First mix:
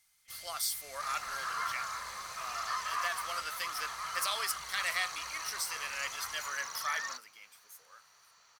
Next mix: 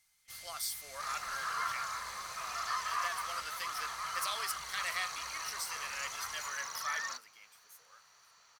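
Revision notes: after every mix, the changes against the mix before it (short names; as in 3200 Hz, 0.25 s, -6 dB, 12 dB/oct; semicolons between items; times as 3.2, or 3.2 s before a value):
speech -4.0 dB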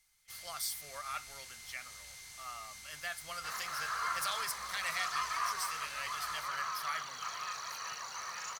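speech: remove HPF 250 Hz 24 dB/oct; second sound: entry +2.45 s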